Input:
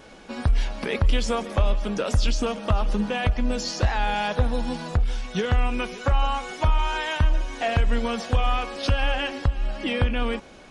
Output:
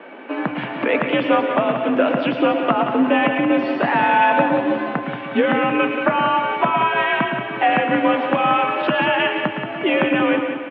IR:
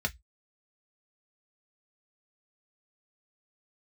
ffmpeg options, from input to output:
-filter_complex "[0:a]aecho=1:1:180|360|540|720|900|1080:0.398|0.191|0.0917|0.044|0.0211|0.0101,asplit=2[a][b];[1:a]atrim=start_sample=2205,adelay=111[c];[b][c]afir=irnorm=-1:irlink=0,volume=-14dB[d];[a][d]amix=inputs=2:normalize=0,highpass=f=160:t=q:w=0.5412,highpass=f=160:t=q:w=1.307,lowpass=f=2.7k:t=q:w=0.5176,lowpass=f=2.7k:t=q:w=0.7071,lowpass=f=2.7k:t=q:w=1.932,afreqshift=54,volume=9dB"

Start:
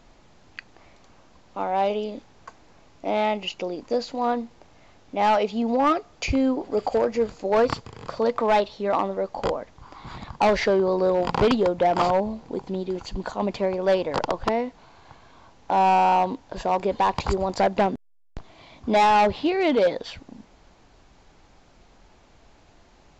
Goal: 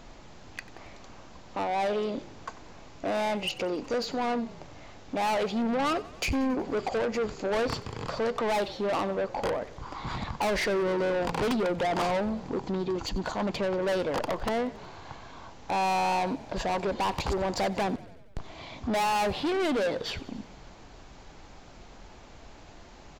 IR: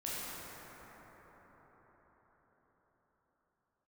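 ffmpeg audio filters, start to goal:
-filter_complex "[0:a]asplit=2[a][b];[b]acompressor=threshold=-32dB:ratio=6,volume=-1dB[c];[a][c]amix=inputs=2:normalize=0,asoftclip=type=tanh:threshold=-25dB,asplit=7[d][e][f][g][h][i][j];[e]adelay=92,afreqshift=-36,volume=-19dB[k];[f]adelay=184,afreqshift=-72,volume=-23dB[l];[g]adelay=276,afreqshift=-108,volume=-27dB[m];[h]adelay=368,afreqshift=-144,volume=-31dB[n];[i]adelay=460,afreqshift=-180,volume=-35.1dB[o];[j]adelay=552,afreqshift=-216,volume=-39.1dB[p];[d][k][l][m][n][o][p]amix=inputs=7:normalize=0"

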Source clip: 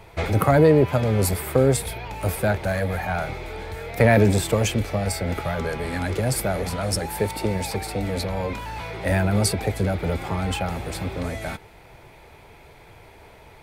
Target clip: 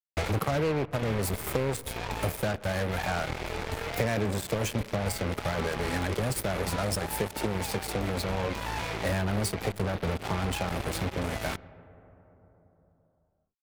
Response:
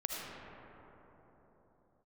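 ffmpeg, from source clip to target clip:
-filter_complex "[0:a]acompressor=threshold=-28dB:ratio=4,acrusher=bits=4:mix=0:aa=0.5,asplit=2[a][b];[1:a]atrim=start_sample=2205,lowpass=3.1k[c];[b][c]afir=irnorm=-1:irlink=0,volume=-20dB[d];[a][d]amix=inputs=2:normalize=0"

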